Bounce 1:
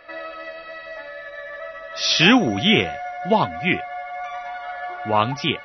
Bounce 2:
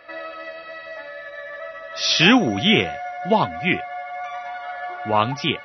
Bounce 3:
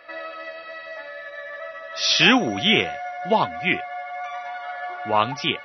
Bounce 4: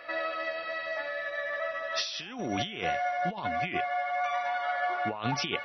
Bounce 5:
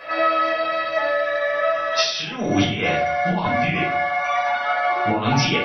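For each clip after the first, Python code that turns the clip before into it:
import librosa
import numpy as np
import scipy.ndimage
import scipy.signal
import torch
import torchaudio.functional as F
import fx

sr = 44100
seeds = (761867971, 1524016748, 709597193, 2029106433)

y1 = scipy.signal.sosfilt(scipy.signal.butter(2, 64.0, 'highpass', fs=sr, output='sos'), x)
y2 = fx.low_shelf(y1, sr, hz=280.0, db=-7.5)
y3 = fx.over_compress(y2, sr, threshold_db=-29.0, ratio=-1.0)
y3 = y3 * 10.0 ** (-3.0 / 20.0)
y4 = fx.room_shoebox(y3, sr, seeds[0], volume_m3=400.0, walls='furnished', distance_m=5.3)
y4 = y4 * 10.0 ** (3.5 / 20.0)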